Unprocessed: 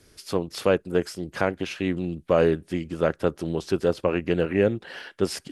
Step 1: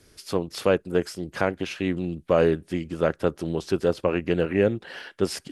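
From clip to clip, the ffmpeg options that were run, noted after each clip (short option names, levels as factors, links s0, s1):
-af anull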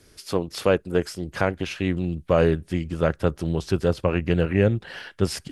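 -af "asubboost=boost=4:cutoff=150,volume=1.19"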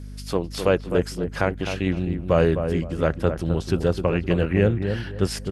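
-filter_complex "[0:a]asplit=2[s0][s1];[s1]adelay=258,lowpass=f=1200:p=1,volume=0.447,asplit=2[s2][s3];[s3]adelay=258,lowpass=f=1200:p=1,volume=0.28,asplit=2[s4][s5];[s5]adelay=258,lowpass=f=1200:p=1,volume=0.28[s6];[s0][s2][s4][s6]amix=inputs=4:normalize=0,aeval=exprs='val(0)+0.0178*(sin(2*PI*50*n/s)+sin(2*PI*2*50*n/s)/2+sin(2*PI*3*50*n/s)/3+sin(2*PI*4*50*n/s)/4+sin(2*PI*5*50*n/s)/5)':c=same"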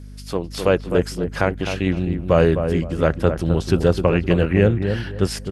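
-af "dynaudnorm=f=220:g=5:m=3.76,volume=0.891"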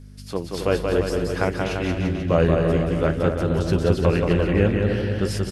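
-filter_complex "[0:a]flanger=delay=7.7:depth=7:regen=-55:speed=0.56:shape=triangular,asplit=2[s0][s1];[s1]aecho=0:1:180|342|487.8|619|737.1:0.631|0.398|0.251|0.158|0.1[s2];[s0][s2]amix=inputs=2:normalize=0"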